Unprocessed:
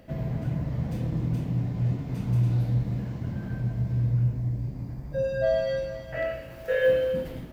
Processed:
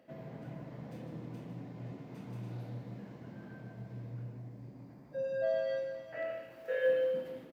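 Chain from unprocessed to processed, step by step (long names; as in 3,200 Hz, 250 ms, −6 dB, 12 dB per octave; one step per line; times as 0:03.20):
high-pass filter 250 Hz 12 dB per octave
high-shelf EQ 3,800 Hz −6.5 dB
single-tap delay 151 ms −9 dB
level −8.5 dB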